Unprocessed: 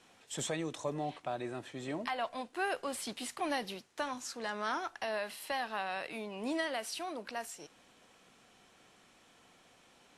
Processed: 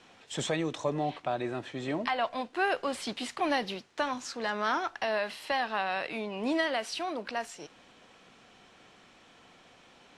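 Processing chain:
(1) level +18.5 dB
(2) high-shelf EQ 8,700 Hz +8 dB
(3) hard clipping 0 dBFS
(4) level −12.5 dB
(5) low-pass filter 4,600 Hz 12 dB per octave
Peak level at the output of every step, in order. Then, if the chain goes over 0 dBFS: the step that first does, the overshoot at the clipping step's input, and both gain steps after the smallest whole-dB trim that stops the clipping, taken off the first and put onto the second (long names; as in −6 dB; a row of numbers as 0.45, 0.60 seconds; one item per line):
−3.5, −3.0, −3.0, −15.5, −16.0 dBFS
no step passes full scale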